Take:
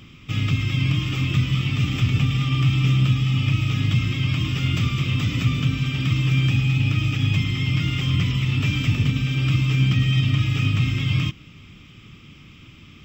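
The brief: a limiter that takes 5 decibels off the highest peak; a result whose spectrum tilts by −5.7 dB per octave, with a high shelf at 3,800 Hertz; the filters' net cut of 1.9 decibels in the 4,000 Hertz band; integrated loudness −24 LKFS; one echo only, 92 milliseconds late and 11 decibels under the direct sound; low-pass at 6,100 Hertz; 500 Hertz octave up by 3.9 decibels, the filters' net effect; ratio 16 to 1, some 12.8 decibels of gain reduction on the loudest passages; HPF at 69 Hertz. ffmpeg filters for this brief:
ffmpeg -i in.wav -af "highpass=69,lowpass=6100,equalizer=frequency=500:width_type=o:gain=5.5,highshelf=frequency=3800:gain=7.5,equalizer=frequency=4000:width_type=o:gain=-7,acompressor=threshold=-28dB:ratio=16,alimiter=level_in=1dB:limit=-24dB:level=0:latency=1,volume=-1dB,aecho=1:1:92:0.282,volume=8.5dB" out.wav

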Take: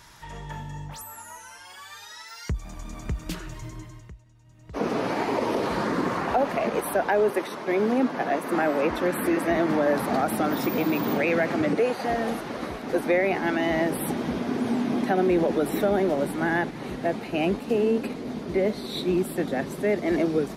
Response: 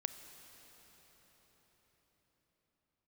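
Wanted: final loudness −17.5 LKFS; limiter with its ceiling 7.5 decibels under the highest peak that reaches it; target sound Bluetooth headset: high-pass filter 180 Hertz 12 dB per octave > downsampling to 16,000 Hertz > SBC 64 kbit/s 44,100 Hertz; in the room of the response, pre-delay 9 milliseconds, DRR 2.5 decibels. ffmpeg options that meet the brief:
-filter_complex "[0:a]alimiter=limit=-19dB:level=0:latency=1,asplit=2[link_01][link_02];[1:a]atrim=start_sample=2205,adelay=9[link_03];[link_02][link_03]afir=irnorm=-1:irlink=0,volume=-2dB[link_04];[link_01][link_04]amix=inputs=2:normalize=0,highpass=180,aresample=16000,aresample=44100,volume=9dB" -ar 44100 -c:a sbc -b:a 64k

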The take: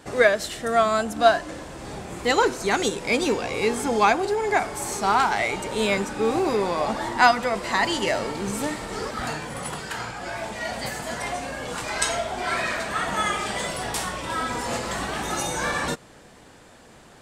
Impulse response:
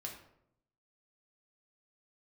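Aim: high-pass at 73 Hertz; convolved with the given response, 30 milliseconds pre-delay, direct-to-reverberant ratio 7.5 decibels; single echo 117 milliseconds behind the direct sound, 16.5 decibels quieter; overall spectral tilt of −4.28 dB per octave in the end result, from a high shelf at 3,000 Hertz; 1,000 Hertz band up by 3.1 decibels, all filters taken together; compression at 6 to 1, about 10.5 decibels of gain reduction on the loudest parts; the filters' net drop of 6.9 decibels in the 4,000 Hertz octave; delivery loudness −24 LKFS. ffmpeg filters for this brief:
-filter_complex "[0:a]highpass=73,equalizer=frequency=1000:width_type=o:gain=5,highshelf=frequency=3000:gain=-5.5,equalizer=frequency=4000:width_type=o:gain=-5,acompressor=threshold=-21dB:ratio=6,aecho=1:1:117:0.15,asplit=2[link_01][link_02];[1:a]atrim=start_sample=2205,adelay=30[link_03];[link_02][link_03]afir=irnorm=-1:irlink=0,volume=-5.5dB[link_04];[link_01][link_04]amix=inputs=2:normalize=0,volume=2.5dB"

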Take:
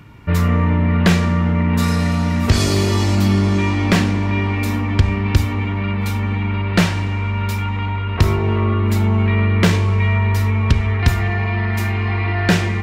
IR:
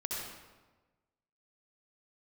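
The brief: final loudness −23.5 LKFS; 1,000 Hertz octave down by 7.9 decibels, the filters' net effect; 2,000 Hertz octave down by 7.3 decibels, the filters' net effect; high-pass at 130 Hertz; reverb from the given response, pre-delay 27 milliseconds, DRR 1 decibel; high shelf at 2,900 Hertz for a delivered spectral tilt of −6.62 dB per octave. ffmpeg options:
-filter_complex "[0:a]highpass=130,equalizer=frequency=1000:width_type=o:gain=-8,equalizer=frequency=2000:width_type=o:gain=-5,highshelf=frequency=2900:gain=-4.5,asplit=2[link_01][link_02];[1:a]atrim=start_sample=2205,adelay=27[link_03];[link_02][link_03]afir=irnorm=-1:irlink=0,volume=-4dB[link_04];[link_01][link_04]amix=inputs=2:normalize=0,volume=-4.5dB"

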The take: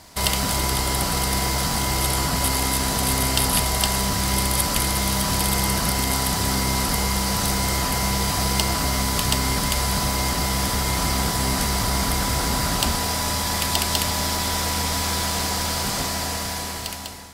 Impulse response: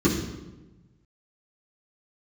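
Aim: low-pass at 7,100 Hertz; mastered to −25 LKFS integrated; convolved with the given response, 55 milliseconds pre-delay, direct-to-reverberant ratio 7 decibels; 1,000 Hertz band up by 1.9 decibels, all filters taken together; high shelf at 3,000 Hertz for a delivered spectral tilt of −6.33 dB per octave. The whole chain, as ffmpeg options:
-filter_complex "[0:a]lowpass=7100,equalizer=frequency=1000:width_type=o:gain=3,highshelf=frequency=3000:gain=-7.5,asplit=2[link_01][link_02];[1:a]atrim=start_sample=2205,adelay=55[link_03];[link_02][link_03]afir=irnorm=-1:irlink=0,volume=-22dB[link_04];[link_01][link_04]amix=inputs=2:normalize=0,volume=-8dB"

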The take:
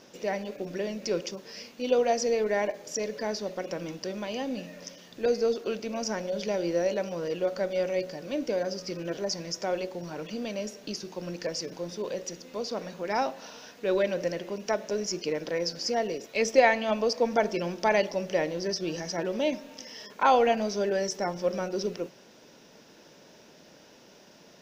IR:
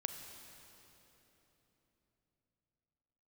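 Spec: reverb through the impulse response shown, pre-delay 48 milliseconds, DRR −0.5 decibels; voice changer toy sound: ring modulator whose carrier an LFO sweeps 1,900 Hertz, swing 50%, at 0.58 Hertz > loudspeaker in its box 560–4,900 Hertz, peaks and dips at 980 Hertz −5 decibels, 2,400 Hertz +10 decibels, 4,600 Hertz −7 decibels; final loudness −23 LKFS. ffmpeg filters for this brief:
-filter_complex "[0:a]asplit=2[link_01][link_02];[1:a]atrim=start_sample=2205,adelay=48[link_03];[link_02][link_03]afir=irnorm=-1:irlink=0,volume=0.5dB[link_04];[link_01][link_04]amix=inputs=2:normalize=0,aeval=exprs='val(0)*sin(2*PI*1900*n/s+1900*0.5/0.58*sin(2*PI*0.58*n/s))':channel_layout=same,highpass=560,equalizer=frequency=980:width_type=q:width=4:gain=-5,equalizer=frequency=2400:width_type=q:width=4:gain=10,equalizer=frequency=4600:width_type=q:width=4:gain=-7,lowpass=frequency=4900:width=0.5412,lowpass=frequency=4900:width=1.3066,volume=0.5dB"

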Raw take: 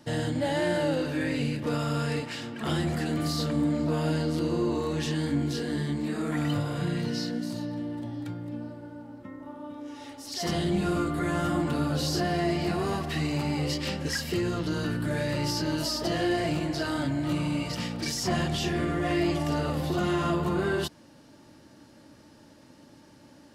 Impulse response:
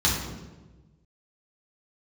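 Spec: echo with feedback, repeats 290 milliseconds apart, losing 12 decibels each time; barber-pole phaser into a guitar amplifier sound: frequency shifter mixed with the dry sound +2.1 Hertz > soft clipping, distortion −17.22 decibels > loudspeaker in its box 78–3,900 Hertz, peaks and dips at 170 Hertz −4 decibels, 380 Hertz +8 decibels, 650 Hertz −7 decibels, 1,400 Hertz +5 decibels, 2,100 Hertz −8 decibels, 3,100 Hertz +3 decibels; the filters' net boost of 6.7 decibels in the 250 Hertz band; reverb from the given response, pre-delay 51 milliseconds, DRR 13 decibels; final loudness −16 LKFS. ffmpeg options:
-filter_complex "[0:a]equalizer=frequency=250:width_type=o:gain=7,aecho=1:1:290|580|870:0.251|0.0628|0.0157,asplit=2[link_01][link_02];[1:a]atrim=start_sample=2205,adelay=51[link_03];[link_02][link_03]afir=irnorm=-1:irlink=0,volume=-27dB[link_04];[link_01][link_04]amix=inputs=2:normalize=0,asplit=2[link_05][link_06];[link_06]afreqshift=2.1[link_07];[link_05][link_07]amix=inputs=2:normalize=1,asoftclip=threshold=-19dB,highpass=78,equalizer=frequency=170:width_type=q:width=4:gain=-4,equalizer=frequency=380:width_type=q:width=4:gain=8,equalizer=frequency=650:width_type=q:width=4:gain=-7,equalizer=frequency=1400:width_type=q:width=4:gain=5,equalizer=frequency=2100:width_type=q:width=4:gain=-8,equalizer=frequency=3100:width_type=q:width=4:gain=3,lowpass=frequency=3900:width=0.5412,lowpass=frequency=3900:width=1.3066,volume=11.5dB"

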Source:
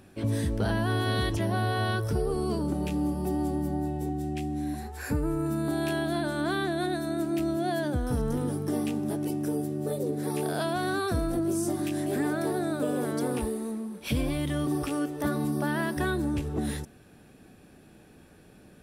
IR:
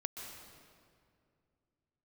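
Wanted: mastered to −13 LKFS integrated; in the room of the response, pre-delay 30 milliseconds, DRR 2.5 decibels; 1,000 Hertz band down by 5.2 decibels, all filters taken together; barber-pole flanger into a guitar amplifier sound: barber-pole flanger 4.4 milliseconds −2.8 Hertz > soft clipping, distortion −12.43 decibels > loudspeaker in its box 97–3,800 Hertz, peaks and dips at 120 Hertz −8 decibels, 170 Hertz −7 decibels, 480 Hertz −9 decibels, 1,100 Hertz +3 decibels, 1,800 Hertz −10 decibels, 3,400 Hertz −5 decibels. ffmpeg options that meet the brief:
-filter_complex "[0:a]equalizer=frequency=1000:width_type=o:gain=-7.5,asplit=2[link_01][link_02];[1:a]atrim=start_sample=2205,adelay=30[link_03];[link_02][link_03]afir=irnorm=-1:irlink=0,volume=-2dB[link_04];[link_01][link_04]amix=inputs=2:normalize=0,asplit=2[link_05][link_06];[link_06]adelay=4.4,afreqshift=-2.8[link_07];[link_05][link_07]amix=inputs=2:normalize=1,asoftclip=threshold=-28dB,highpass=97,equalizer=frequency=120:width_type=q:width=4:gain=-8,equalizer=frequency=170:width_type=q:width=4:gain=-7,equalizer=frequency=480:width_type=q:width=4:gain=-9,equalizer=frequency=1100:width_type=q:width=4:gain=3,equalizer=frequency=1800:width_type=q:width=4:gain=-10,equalizer=frequency=3400:width_type=q:width=4:gain=-5,lowpass=frequency=3800:width=0.5412,lowpass=frequency=3800:width=1.3066,volume=23.5dB"

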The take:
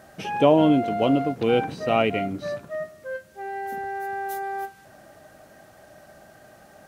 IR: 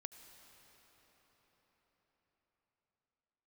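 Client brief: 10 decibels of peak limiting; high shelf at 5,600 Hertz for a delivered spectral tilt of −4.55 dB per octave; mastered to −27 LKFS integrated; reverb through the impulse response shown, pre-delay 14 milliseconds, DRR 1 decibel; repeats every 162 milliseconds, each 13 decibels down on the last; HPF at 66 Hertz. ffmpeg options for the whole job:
-filter_complex "[0:a]highpass=66,highshelf=frequency=5600:gain=7,alimiter=limit=-14.5dB:level=0:latency=1,aecho=1:1:162|324|486:0.224|0.0493|0.0108,asplit=2[link_01][link_02];[1:a]atrim=start_sample=2205,adelay=14[link_03];[link_02][link_03]afir=irnorm=-1:irlink=0,volume=3.5dB[link_04];[link_01][link_04]amix=inputs=2:normalize=0,volume=-2.5dB"

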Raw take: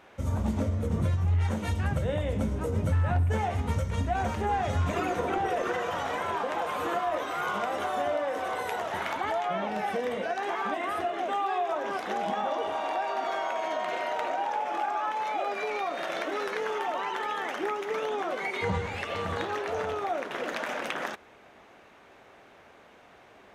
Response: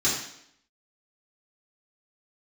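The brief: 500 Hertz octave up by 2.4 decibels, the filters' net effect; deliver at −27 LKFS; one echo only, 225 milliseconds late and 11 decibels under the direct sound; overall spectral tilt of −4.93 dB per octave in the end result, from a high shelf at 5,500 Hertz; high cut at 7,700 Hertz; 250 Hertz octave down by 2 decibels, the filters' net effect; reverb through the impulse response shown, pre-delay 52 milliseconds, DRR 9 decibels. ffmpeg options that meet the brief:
-filter_complex "[0:a]lowpass=7700,equalizer=frequency=250:width_type=o:gain=-4,equalizer=frequency=500:width_type=o:gain=4,highshelf=frequency=5500:gain=-3.5,aecho=1:1:225:0.282,asplit=2[link_01][link_02];[1:a]atrim=start_sample=2205,adelay=52[link_03];[link_02][link_03]afir=irnorm=-1:irlink=0,volume=-21.5dB[link_04];[link_01][link_04]amix=inputs=2:normalize=0,volume=1.5dB"

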